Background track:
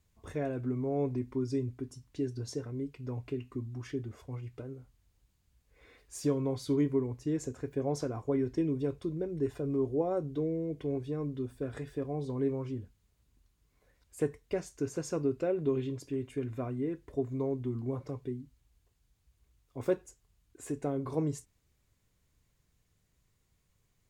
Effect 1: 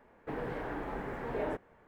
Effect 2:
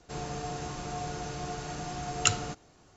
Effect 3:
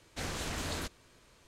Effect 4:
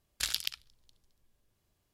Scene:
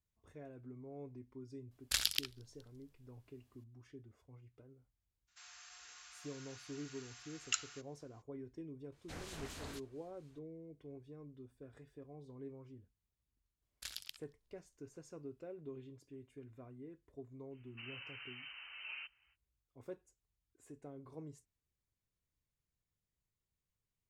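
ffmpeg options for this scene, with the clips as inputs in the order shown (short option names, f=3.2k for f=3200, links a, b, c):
-filter_complex "[4:a]asplit=2[a][b];[0:a]volume=-18dB[c];[2:a]highpass=f=1.4k:w=0.5412,highpass=f=1.4k:w=1.3066[d];[3:a]acrossover=split=2100[e][f];[e]aeval=exprs='val(0)*(1-0.5/2+0.5/2*cos(2*PI*4.1*n/s))':c=same[g];[f]aeval=exprs='val(0)*(1-0.5/2-0.5/2*cos(2*PI*4.1*n/s))':c=same[h];[g][h]amix=inputs=2:normalize=0[i];[1:a]lowpass=f=2.6k:t=q:w=0.5098,lowpass=f=2.6k:t=q:w=0.6013,lowpass=f=2.6k:t=q:w=0.9,lowpass=f=2.6k:t=q:w=2.563,afreqshift=-3100[j];[a]atrim=end=1.93,asetpts=PTS-STARTPTS,volume=-1dB,afade=t=in:d=0.004:c=hsin,afade=t=out:st=1.926:d=0.004:c=hsin,adelay=1710[k];[d]atrim=end=2.96,asetpts=PTS-STARTPTS,volume=-10.5dB,afade=t=in:d=0.02,afade=t=out:st=2.94:d=0.02,adelay=5270[l];[i]atrim=end=1.47,asetpts=PTS-STARTPTS,volume=-9dB,afade=t=in:d=0.004:c=hsin,afade=t=out:st=1.466:d=0.004:c=hsin,adelay=8920[m];[b]atrim=end=1.93,asetpts=PTS-STARTPTS,volume=-14dB,afade=t=in:d=0.004:c=hsin,afade=t=out:st=1.926:d=0.004:c=hsin,adelay=13620[n];[j]atrim=end=1.87,asetpts=PTS-STARTPTS,volume=-13dB,afade=t=in:d=0.05,afade=t=out:st=1.82:d=0.05,adelay=17500[o];[c][k][l][m][n][o]amix=inputs=6:normalize=0"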